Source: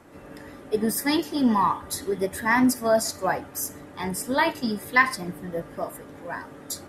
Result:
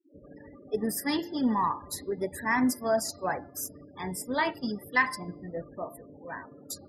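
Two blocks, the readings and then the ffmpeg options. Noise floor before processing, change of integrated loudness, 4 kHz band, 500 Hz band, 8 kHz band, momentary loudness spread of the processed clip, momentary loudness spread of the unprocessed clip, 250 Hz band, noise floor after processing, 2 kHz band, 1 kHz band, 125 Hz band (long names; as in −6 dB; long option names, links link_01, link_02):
−45 dBFS, −5.5 dB, −6.0 dB, −5.5 dB, −6.0 dB, 15 LU, 15 LU, −5.5 dB, −52 dBFS, −5.5 dB, −5.5 dB, −5.5 dB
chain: -af "afftfilt=real='re*gte(hypot(re,im),0.0158)':imag='im*gte(hypot(re,im),0.0158)':win_size=1024:overlap=0.75,bandreject=frequency=343.7:width_type=h:width=4,bandreject=frequency=687.4:width_type=h:width=4,bandreject=frequency=1031.1:width_type=h:width=4,bandreject=frequency=1374.8:width_type=h:width=4,bandreject=frequency=1718.5:width_type=h:width=4,bandreject=frequency=2062.2:width_type=h:width=4,bandreject=frequency=2405.9:width_type=h:width=4,bandreject=frequency=2749.6:width_type=h:width=4,bandreject=frequency=3093.3:width_type=h:width=4,bandreject=frequency=3437:width_type=h:width=4,bandreject=frequency=3780.7:width_type=h:width=4,bandreject=frequency=4124.4:width_type=h:width=4,bandreject=frequency=4468.1:width_type=h:width=4,bandreject=frequency=4811.8:width_type=h:width=4,bandreject=frequency=5155.5:width_type=h:width=4,volume=-5.5dB"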